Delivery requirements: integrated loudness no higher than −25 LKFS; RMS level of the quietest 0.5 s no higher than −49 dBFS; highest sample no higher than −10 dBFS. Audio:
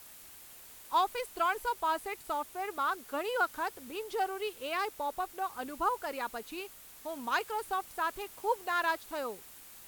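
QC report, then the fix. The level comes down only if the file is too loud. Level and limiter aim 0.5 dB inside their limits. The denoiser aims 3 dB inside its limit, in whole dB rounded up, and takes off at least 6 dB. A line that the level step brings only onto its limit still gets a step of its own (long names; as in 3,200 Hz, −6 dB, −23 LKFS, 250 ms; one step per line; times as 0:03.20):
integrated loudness −34.5 LKFS: in spec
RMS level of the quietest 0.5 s −52 dBFS: in spec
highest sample −18.0 dBFS: in spec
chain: no processing needed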